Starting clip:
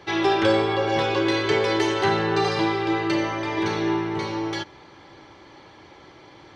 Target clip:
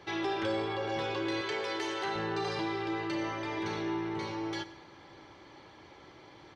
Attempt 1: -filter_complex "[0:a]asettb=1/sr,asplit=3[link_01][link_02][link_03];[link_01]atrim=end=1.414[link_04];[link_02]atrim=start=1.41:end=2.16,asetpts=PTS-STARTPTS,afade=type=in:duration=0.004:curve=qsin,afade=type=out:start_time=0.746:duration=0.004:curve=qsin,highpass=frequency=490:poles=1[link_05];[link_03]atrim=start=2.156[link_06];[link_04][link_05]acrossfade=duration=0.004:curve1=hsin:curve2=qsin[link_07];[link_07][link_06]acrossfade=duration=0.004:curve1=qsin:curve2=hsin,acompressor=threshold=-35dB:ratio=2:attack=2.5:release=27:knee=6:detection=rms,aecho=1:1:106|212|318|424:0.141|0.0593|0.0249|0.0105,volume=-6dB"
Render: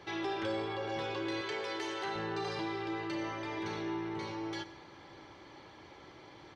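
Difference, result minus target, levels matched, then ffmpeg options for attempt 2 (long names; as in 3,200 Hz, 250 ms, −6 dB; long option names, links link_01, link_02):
downward compressor: peak gain reduction +3.5 dB
-filter_complex "[0:a]asettb=1/sr,asplit=3[link_01][link_02][link_03];[link_01]atrim=end=1.414[link_04];[link_02]atrim=start=1.41:end=2.16,asetpts=PTS-STARTPTS,afade=type=in:duration=0.004:curve=qsin,afade=type=out:start_time=0.746:duration=0.004:curve=qsin,highpass=frequency=490:poles=1[link_05];[link_03]atrim=start=2.156[link_06];[link_04][link_05]acrossfade=duration=0.004:curve1=hsin:curve2=qsin[link_07];[link_07][link_06]acrossfade=duration=0.004:curve1=qsin:curve2=hsin,acompressor=threshold=-28.5dB:ratio=2:attack=2.5:release=27:knee=6:detection=rms,aecho=1:1:106|212|318|424:0.141|0.0593|0.0249|0.0105,volume=-6dB"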